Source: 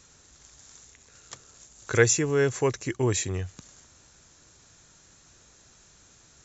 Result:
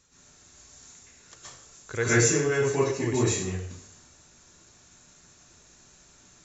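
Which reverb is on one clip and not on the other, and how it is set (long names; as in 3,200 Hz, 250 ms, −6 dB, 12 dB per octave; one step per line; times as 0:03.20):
dense smooth reverb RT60 0.61 s, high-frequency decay 0.9×, pre-delay 110 ms, DRR −9.5 dB
level −9 dB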